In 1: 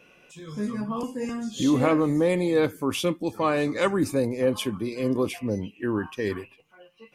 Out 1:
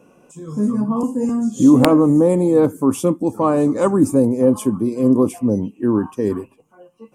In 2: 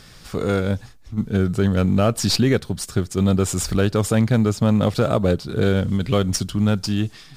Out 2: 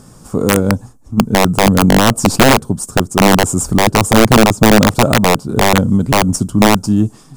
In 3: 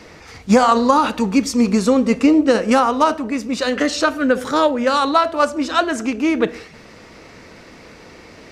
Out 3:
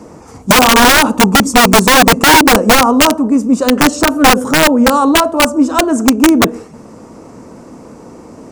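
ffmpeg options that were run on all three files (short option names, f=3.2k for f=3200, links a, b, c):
-af "equalizer=f=125:t=o:w=1:g=5,equalizer=f=250:t=o:w=1:g=10,equalizer=f=500:t=o:w=1:g=3,equalizer=f=1k:t=o:w=1:g=8,equalizer=f=2k:t=o:w=1:g=-11,equalizer=f=4k:t=o:w=1:g=-12,equalizer=f=8k:t=o:w=1:g=10,aeval=exprs='(mod(1.33*val(0)+1,2)-1)/1.33':c=same,volume=1dB"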